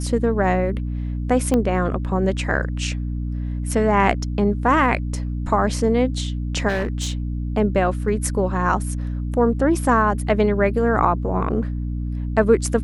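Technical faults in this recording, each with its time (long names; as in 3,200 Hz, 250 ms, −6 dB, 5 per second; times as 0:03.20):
mains hum 60 Hz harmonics 5 −25 dBFS
0:01.54: click −9 dBFS
0:06.68–0:07.12: clipping −18.5 dBFS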